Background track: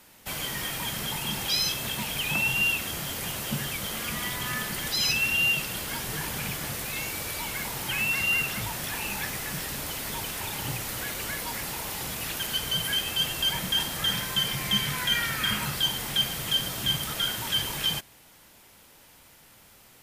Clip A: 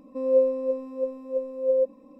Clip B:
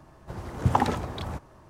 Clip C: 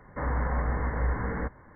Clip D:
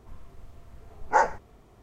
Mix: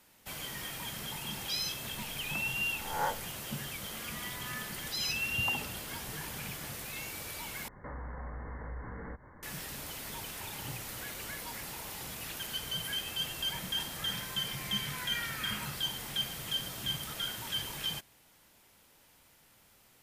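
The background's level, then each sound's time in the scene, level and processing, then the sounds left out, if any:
background track -8.5 dB
1.88 add D -14 dB + spectral swells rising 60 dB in 0.68 s
4.73 add B -17.5 dB
7.68 replace with C -1.5 dB + compressor 3:1, threshold -41 dBFS
not used: A

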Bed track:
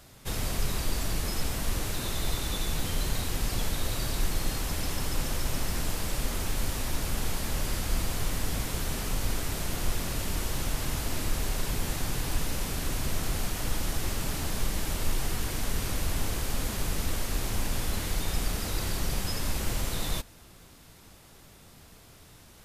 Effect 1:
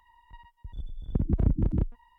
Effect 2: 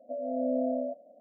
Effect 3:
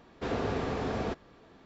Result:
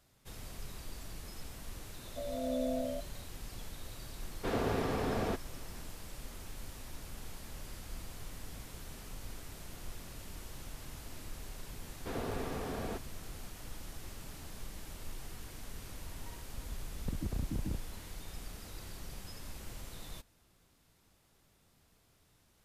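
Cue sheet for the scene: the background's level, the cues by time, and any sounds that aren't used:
bed track -16 dB
2.07 add 2 -5.5 dB
4.22 add 3 -1.5 dB
11.84 add 3 -7 dB
15.93 add 1 -5.5 dB + compressor 2.5:1, threshold -29 dBFS

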